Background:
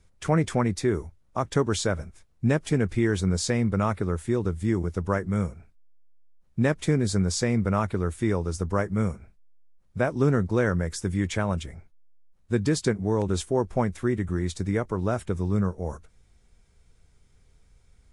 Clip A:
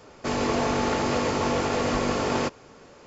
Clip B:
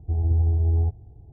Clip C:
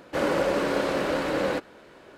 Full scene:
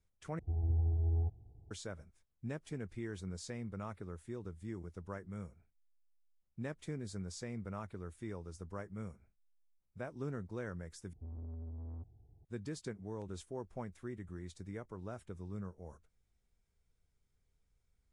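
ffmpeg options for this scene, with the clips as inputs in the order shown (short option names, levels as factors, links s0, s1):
-filter_complex "[2:a]asplit=2[s0][s1];[0:a]volume=0.112[s2];[s1]asoftclip=type=tanh:threshold=0.0447[s3];[s2]asplit=3[s4][s5][s6];[s4]atrim=end=0.394[s7];[s0]atrim=end=1.32,asetpts=PTS-STARTPTS,volume=0.266[s8];[s5]atrim=start=1.706:end=11.134[s9];[s3]atrim=end=1.32,asetpts=PTS-STARTPTS,volume=0.158[s10];[s6]atrim=start=12.446[s11];[s7][s8]acrossfade=d=0.004:c1=hsin:c2=hsin[s12];[s12][s9]acrossfade=d=0.004:c1=hsin:c2=hsin[s13];[s13][s10]acrossfade=d=0.004:c1=hsin:c2=hsin[s14];[s14][s11]acrossfade=d=0.004:c1=hsin:c2=hsin"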